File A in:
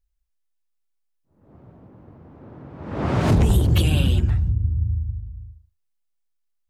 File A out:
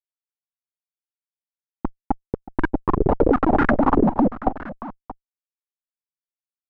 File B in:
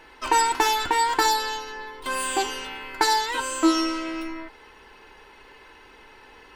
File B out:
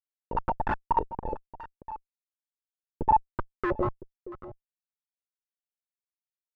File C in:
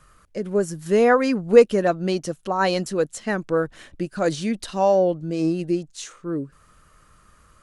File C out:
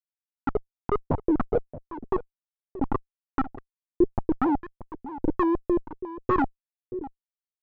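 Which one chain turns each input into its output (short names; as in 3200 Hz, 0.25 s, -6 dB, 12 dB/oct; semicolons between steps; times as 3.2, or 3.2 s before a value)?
sine-wave speech; compressor 8:1, threshold -20 dBFS; resonant low shelf 370 Hz +9.5 dB, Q 3; Schmitt trigger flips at -21 dBFS; on a send: echo 0.629 s -15.5 dB; on the sum: stepped low-pass 8.1 Hz 420–1500 Hz; gain +2 dB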